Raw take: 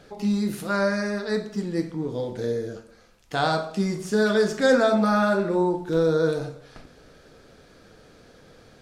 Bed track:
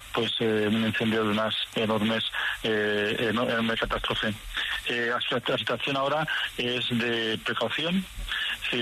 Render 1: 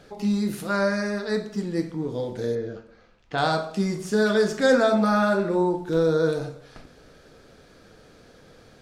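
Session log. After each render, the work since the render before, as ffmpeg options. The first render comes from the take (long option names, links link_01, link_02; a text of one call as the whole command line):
ffmpeg -i in.wav -filter_complex "[0:a]asettb=1/sr,asplit=3[link_01][link_02][link_03];[link_01]atrim=end=2.554[link_04];[link_02]atrim=start=2.55:end=3.38,asetpts=PTS-STARTPTS,afade=type=in:duration=0.004:curve=qsin,afade=type=out:start_time=0.826:duration=0.004:curve=qsin,lowpass=3500[link_05];[link_03]atrim=start=3.376[link_06];[link_04][link_05]acrossfade=duration=0.004:curve1=hsin:curve2=qsin[link_07];[link_07][link_06]acrossfade=duration=0.004:curve1=qsin:curve2=hsin" out.wav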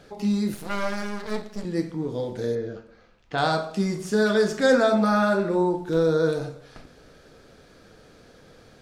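ffmpeg -i in.wav -filter_complex "[0:a]asettb=1/sr,asplit=3[link_01][link_02][link_03];[link_01]atrim=end=0.544[link_04];[link_02]atrim=start=0.54:end=1.65,asetpts=PTS-STARTPTS,afade=type=in:duration=0.004:curve=qsin,afade=type=out:start_time=1.106:duration=0.004:curve=qsin,aeval=exprs='max(val(0),0)':channel_layout=same[link_05];[link_03]atrim=start=1.646[link_06];[link_04][link_05]acrossfade=duration=0.004:curve1=hsin:curve2=qsin[link_07];[link_07][link_06]acrossfade=duration=0.004:curve1=qsin:curve2=hsin" out.wav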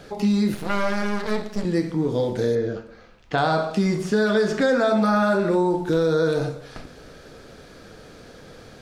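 ffmpeg -i in.wav -filter_complex "[0:a]asplit=2[link_01][link_02];[link_02]alimiter=limit=-18.5dB:level=0:latency=1,volume=2dB[link_03];[link_01][link_03]amix=inputs=2:normalize=0,acrossover=split=1500|4500[link_04][link_05][link_06];[link_04]acompressor=threshold=-17dB:ratio=4[link_07];[link_05]acompressor=threshold=-31dB:ratio=4[link_08];[link_06]acompressor=threshold=-46dB:ratio=4[link_09];[link_07][link_08][link_09]amix=inputs=3:normalize=0" out.wav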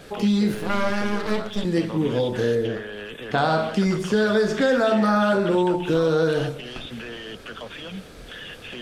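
ffmpeg -i in.wav -i bed.wav -filter_complex "[1:a]volume=-9.5dB[link_01];[0:a][link_01]amix=inputs=2:normalize=0" out.wav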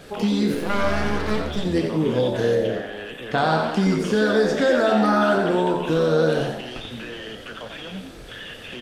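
ffmpeg -i in.wav -filter_complex "[0:a]asplit=2[link_01][link_02];[link_02]adelay=32,volume=-11.5dB[link_03];[link_01][link_03]amix=inputs=2:normalize=0,asplit=2[link_04][link_05];[link_05]asplit=5[link_06][link_07][link_08][link_09][link_10];[link_06]adelay=88,afreqshift=75,volume=-8dB[link_11];[link_07]adelay=176,afreqshift=150,volume=-14.9dB[link_12];[link_08]adelay=264,afreqshift=225,volume=-21.9dB[link_13];[link_09]adelay=352,afreqshift=300,volume=-28.8dB[link_14];[link_10]adelay=440,afreqshift=375,volume=-35.7dB[link_15];[link_11][link_12][link_13][link_14][link_15]amix=inputs=5:normalize=0[link_16];[link_04][link_16]amix=inputs=2:normalize=0" out.wav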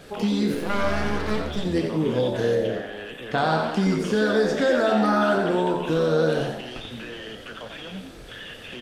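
ffmpeg -i in.wav -af "volume=-2dB" out.wav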